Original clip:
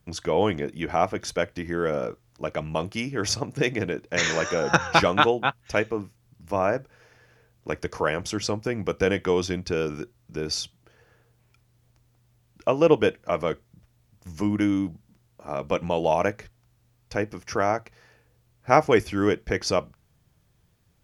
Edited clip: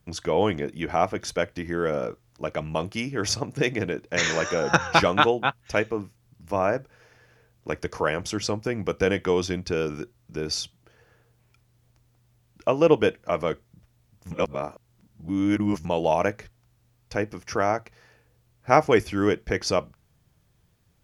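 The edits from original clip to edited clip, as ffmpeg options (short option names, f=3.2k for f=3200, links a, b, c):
-filter_complex "[0:a]asplit=3[a][b][c];[a]atrim=end=14.312[d];[b]atrim=start=14.308:end=15.852,asetpts=PTS-STARTPTS,areverse[e];[c]atrim=start=15.848[f];[d][e]acrossfade=d=0.004:c1=hsin:c2=hsin[g];[g][f]acrossfade=d=0.004:c1=hsin:c2=hsin"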